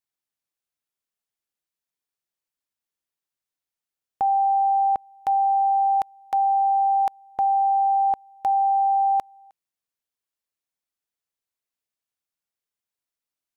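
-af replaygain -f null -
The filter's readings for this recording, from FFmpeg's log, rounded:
track_gain = +5.3 dB
track_peak = 0.103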